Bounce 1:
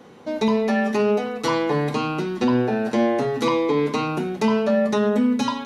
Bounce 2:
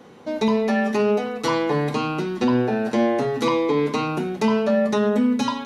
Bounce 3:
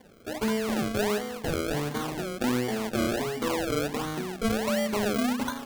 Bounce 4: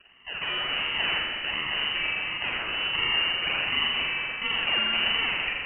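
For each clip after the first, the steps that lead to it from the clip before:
no processing that can be heard
sample-and-hold swept by an LFO 33×, swing 100% 1.4 Hz; level −7.5 dB
Chebyshev high-pass filter 540 Hz, order 3; spring reverb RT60 1.8 s, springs 41 ms, chirp 55 ms, DRR −1.5 dB; voice inversion scrambler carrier 3,400 Hz; level +2 dB

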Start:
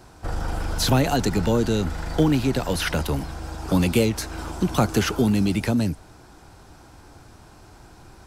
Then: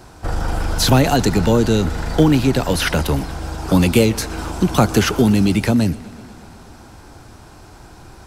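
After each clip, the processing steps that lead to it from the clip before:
feedback echo with a swinging delay time 122 ms, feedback 76%, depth 60 cents, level −22.5 dB
level +6 dB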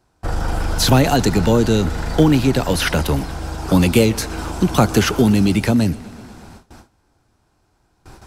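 noise gate with hold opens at −30 dBFS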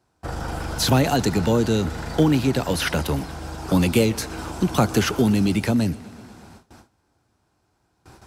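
high-pass filter 66 Hz
level −4.5 dB

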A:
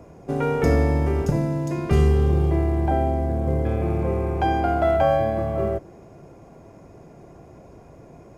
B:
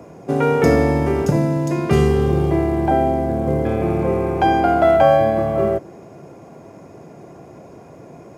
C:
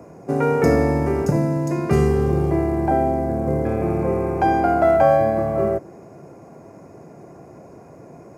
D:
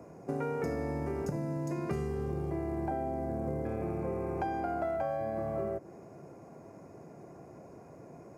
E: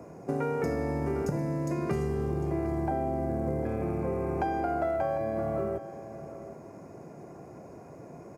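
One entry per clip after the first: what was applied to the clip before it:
high-pass filter 130 Hz 12 dB per octave; level +6.5 dB
parametric band 3,300 Hz −12 dB 0.53 octaves; level −2 dB
downward compressor, threshold −23 dBFS, peak gain reduction 12 dB; level −8 dB
single-tap delay 751 ms −14 dB; level +4 dB

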